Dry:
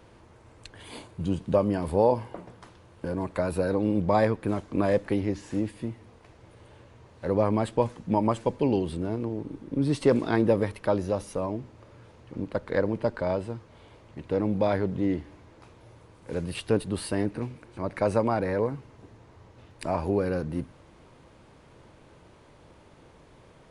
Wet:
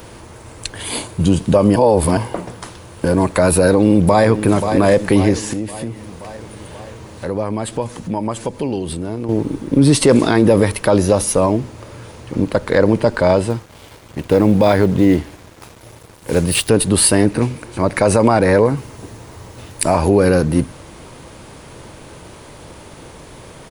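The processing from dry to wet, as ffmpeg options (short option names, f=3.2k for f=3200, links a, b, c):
-filter_complex "[0:a]asplit=2[a][b];[b]afade=t=in:st=3.54:d=0.01,afade=t=out:st=4.42:d=0.01,aecho=0:1:530|1060|1590|2120|2650|3180:0.211349|0.126809|0.0760856|0.0456514|0.0273908|0.0164345[c];[a][c]amix=inputs=2:normalize=0,asettb=1/sr,asplit=3[d][e][f];[d]atrim=end=5.534[g];[e]atrim=start=5.53:end=9.29,asetpts=PTS-STARTPTS,afade=t=in:d=0.004:c=qsin,afade=t=out:st=3.756:d=0.004:c=qsin,acompressor=threshold=-43dB:ratio=2:attack=3.2:release=140:knee=1:detection=peak[h];[f]atrim=start=9.286[i];[g][h]acrossfade=d=0.004:c1=hsin:c2=qsin[j];[j][i]acrossfade=d=0.004:c1=qsin:c2=hsin,asettb=1/sr,asplit=3[k][l][m];[k]atrim=end=13.504[n];[l]atrim=start=13.5:end=16.69,asetpts=PTS-STARTPTS,afade=t=in:d=0.004:c=qsin,afade=t=out:st=3.186:d=0.004:c=qsin,aeval=exprs='sgn(val(0))*max(abs(val(0))-0.00168,0)':c=same[o];[m]atrim=start=16.686[p];[n][o]acrossfade=d=0.004:c1=hsin:c2=qsin[q];[q][p]acrossfade=d=0.004:c1=qsin:c2=hsin,asettb=1/sr,asplit=3[r][s][t];[r]atrim=end=18.774[u];[s]atrim=start=18.77:end=19.98,asetpts=PTS-STARTPTS,afade=t=in:d=0.004:c=qsin,afade=t=out:st=1.206:d=0.004:c=qsin,highshelf=f=9k:g=8.5[v];[t]atrim=start=19.976[w];[u][v]acrossfade=d=0.004:c1=hsin:c2=qsin[x];[x][w]acrossfade=d=0.004:c1=qsin:c2=hsin,asplit=3[y][z][aa];[y]atrim=end=1.762[ab];[z]atrim=start=1.758:end=2.172,asetpts=PTS-STARTPTS,areverse[ac];[aa]atrim=start=2.168[ad];[ab][ac]acrossfade=d=0.004:c1=hsin:c2=hsin[ae];[ae][ad]acrossfade=d=0.004:c1=hsin:c2=hsin,aemphasis=mode=production:type=50fm,alimiter=level_in=17dB:limit=-1dB:release=50:level=0:latency=1,volume=-1dB"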